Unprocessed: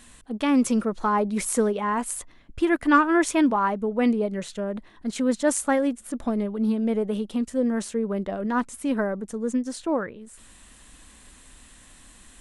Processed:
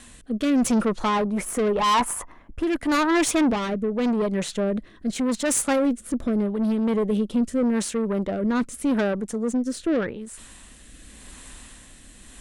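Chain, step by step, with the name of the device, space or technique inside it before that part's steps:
0:01.25–0:02.63: octave-band graphic EQ 125/1,000/4,000/8,000 Hz −4/+11/−11/−4 dB
overdriven rotary cabinet (tube saturation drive 25 dB, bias 0.35; rotating-speaker cabinet horn 0.85 Hz)
level +8.5 dB

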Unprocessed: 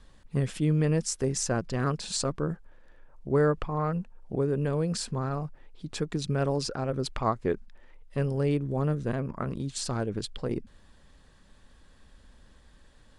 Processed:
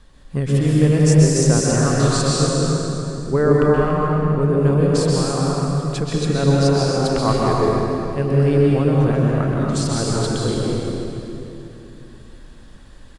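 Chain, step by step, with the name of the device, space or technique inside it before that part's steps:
cave (single-tap delay 284 ms −10 dB; convolution reverb RT60 2.9 s, pre-delay 119 ms, DRR −4 dB)
level +5 dB

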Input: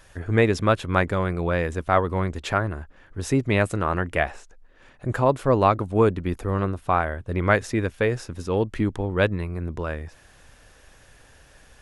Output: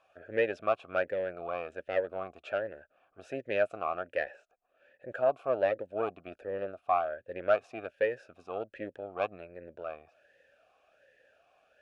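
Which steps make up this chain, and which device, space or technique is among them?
talk box (tube saturation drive 11 dB, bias 0.75; formant filter swept between two vowels a-e 1.3 Hz)
level +4.5 dB

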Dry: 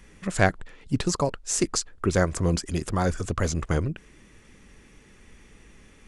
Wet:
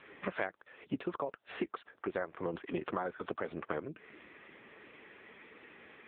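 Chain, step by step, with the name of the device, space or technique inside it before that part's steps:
voicemail (band-pass filter 400–2,800 Hz; downward compressor 12 to 1, threshold −39 dBFS, peak gain reduction 24 dB; level +7.5 dB; AMR narrowband 6.7 kbit/s 8,000 Hz)

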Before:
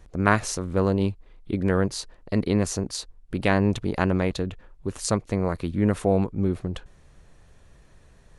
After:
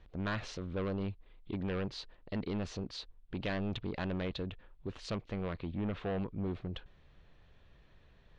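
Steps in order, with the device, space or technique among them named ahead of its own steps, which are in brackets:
overdriven synthesiser ladder filter (soft clipping −22 dBFS, distortion −7 dB; transistor ladder low-pass 4,200 Hz, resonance 40%)
0:05.55–0:06.19: high-frequency loss of the air 110 metres

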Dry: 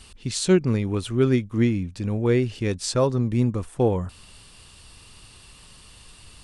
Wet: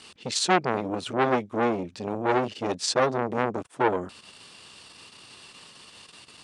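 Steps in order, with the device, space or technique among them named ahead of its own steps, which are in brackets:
public-address speaker with an overloaded transformer (saturating transformer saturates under 1,400 Hz; band-pass filter 230–6,900 Hz)
level +4 dB

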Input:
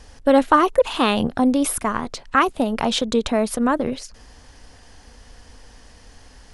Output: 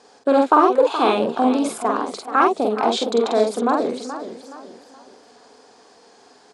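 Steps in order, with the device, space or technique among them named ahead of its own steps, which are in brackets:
high-pass filter 190 Hz 6 dB per octave
full-range speaker at full volume (highs frequency-modulated by the lows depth 0.11 ms; loudspeaker in its box 270–7,800 Hz, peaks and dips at 410 Hz +8 dB, 710 Hz +7 dB, 1,900 Hz −9 dB, 2,900 Hz −9 dB, 5,800 Hz −7 dB)
parametric band 610 Hz −4.5 dB 0.52 octaves
double-tracking delay 47 ms −2.5 dB
feedback echo with a swinging delay time 426 ms, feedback 37%, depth 148 cents, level −11.5 dB

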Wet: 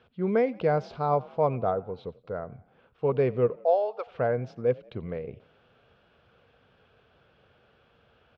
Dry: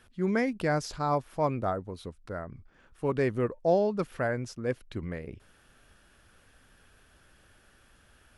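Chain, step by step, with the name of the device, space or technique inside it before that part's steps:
0:03.55–0:04.07: high-pass filter 560 Hz 24 dB per octave
frequency-shifting delay pedal into a guitar cabinet (echo with shifted repeats 89 ms, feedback 52%, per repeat +39 Hz, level −22.5 dB; loudspeaker in its box 89–3,600 Hz, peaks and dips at 130 Hz +4 dB, 300 Hz −6 dB, 470 Hz +9 dB, 710 Hz +4 dB, 1,800 Hz −9 dB)

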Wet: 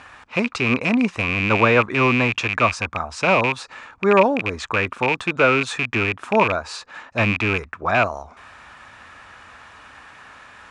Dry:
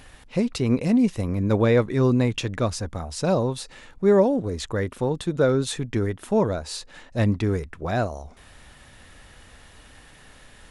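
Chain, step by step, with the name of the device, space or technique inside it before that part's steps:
flat-topped bell 1,200 Hz +9.5 dB 1.2 octaves
car door speaker with a rattle (loose part that buzzes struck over −28 dBFS, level −16 dBFS; loudspeaker in its box 84–7,900 Hz, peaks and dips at 150 Hz −6 dB, 670 Hz +6 dB, 1,200 Hz +5 dB, 2,400 Hz +10 dB)

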